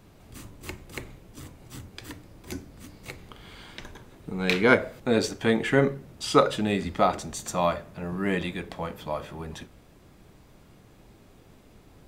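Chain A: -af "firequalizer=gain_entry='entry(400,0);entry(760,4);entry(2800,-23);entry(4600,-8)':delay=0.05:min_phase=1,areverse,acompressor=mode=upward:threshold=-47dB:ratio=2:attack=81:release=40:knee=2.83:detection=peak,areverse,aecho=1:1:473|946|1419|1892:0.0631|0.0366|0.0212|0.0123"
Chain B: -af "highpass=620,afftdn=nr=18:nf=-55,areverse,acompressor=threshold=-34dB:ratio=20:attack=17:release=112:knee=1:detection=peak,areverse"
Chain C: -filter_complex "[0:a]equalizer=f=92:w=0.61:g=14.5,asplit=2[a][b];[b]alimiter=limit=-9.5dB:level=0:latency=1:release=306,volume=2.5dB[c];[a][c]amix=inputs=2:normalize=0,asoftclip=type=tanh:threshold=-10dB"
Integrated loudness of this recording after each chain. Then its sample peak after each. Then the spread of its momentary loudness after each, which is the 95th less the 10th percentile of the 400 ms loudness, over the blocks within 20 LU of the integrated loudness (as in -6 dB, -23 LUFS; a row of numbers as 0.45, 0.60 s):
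-26.5, -39.0, -21.0 LUFS; -3.5, -18.0, -10.0 dBFS; 23, 17, 22 LU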